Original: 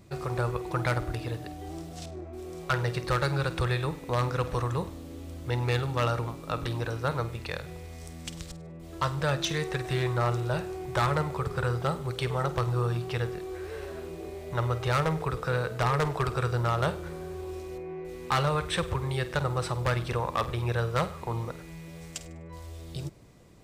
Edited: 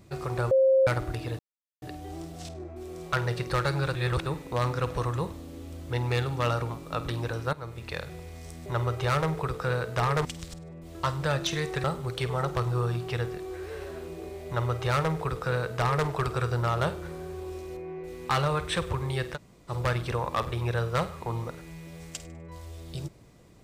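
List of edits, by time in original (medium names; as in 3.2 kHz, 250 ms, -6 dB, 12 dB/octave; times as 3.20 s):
0.51–0.87 s: bleep 531 Hz -17 dBFS
1.39 s: insert silence 0.43 s
3.52–3.83 s: reverse
7.10–7.52 s: fade in, from -15 dB
9.82–11.85 s: delete
14.49–16.08 s: copy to 8.23 s
19.36–19.71 s: room tone, crossfade 0.06 s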